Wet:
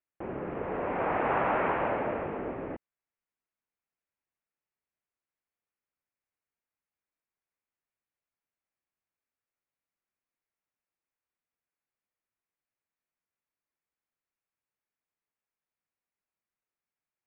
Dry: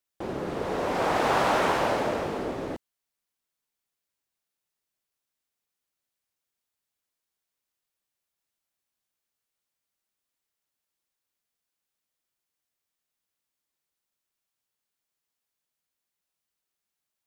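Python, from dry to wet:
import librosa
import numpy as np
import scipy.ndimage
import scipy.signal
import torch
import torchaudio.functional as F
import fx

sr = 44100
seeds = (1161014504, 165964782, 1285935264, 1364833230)

y = scipy.signal.sosfilt(scipy.signal.butter(8, 2600.0, 'lowpass', fs=sr, output='sos'), x)
y = y * librosa.db_to_amplitude(-4.0)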